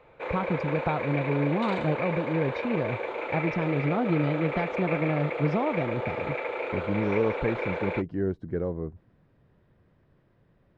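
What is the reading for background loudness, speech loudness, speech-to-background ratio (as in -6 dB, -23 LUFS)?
-32.0 LUFS, -29.5 LUFS, 2.5 dB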